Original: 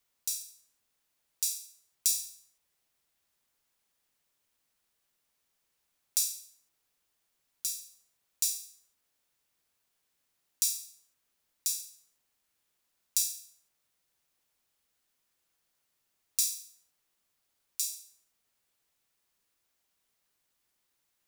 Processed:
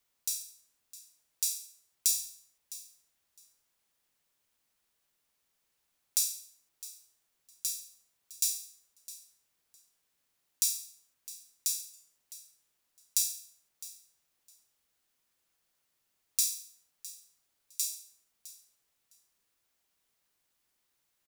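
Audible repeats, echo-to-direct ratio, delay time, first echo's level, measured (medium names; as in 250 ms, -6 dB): 2, -17.0 dB, 659 ms, -17.0 dB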